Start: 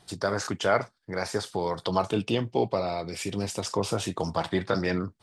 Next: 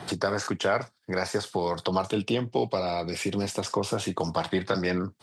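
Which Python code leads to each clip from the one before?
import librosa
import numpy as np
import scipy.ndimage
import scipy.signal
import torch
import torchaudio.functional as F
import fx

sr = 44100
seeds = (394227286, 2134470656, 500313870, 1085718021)

y = scipy.signal.sosfilt(scipy.signal.butter(2, 92.0, 'highpass', fs=sr, output='sos'), x)
y = fx.band_squash(y, sr, depth_pct=70)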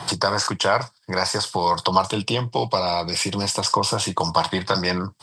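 y = fx.graphic_eq_31(x, sr, hz=(125, 250, 400, 1000, 3150, 5000, 8000), db=(4, -9, -6, 11, 4, 11, 10))
y = F.gain(torch.from_numpy(y), 4.5).numpy()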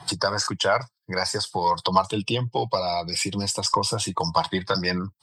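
y = fx.bin_expand(x, sr, power=1.5)
y = fx.cheby_harmonics(y, sr, harmonics=(5, 6, 8), levels_db=(-38, -33, -41), full_scale_db=-5.0)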